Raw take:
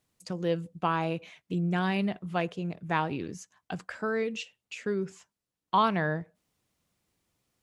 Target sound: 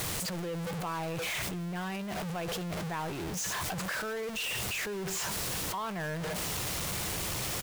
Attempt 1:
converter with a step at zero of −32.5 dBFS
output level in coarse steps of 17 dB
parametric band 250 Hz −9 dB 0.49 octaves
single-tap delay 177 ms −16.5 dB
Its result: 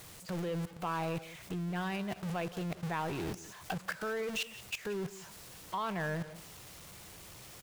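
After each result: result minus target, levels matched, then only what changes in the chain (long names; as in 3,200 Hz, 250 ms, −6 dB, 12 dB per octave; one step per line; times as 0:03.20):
echo-to-direct +9.5 dB; converter with a step at zero: distortion −5 dB
change: single-tap delay 177 ms −26 dB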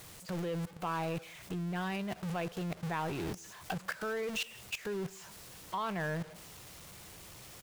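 converter with a step at zero: distortion −5 dB
change: converter with a step at zero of −26 dBFS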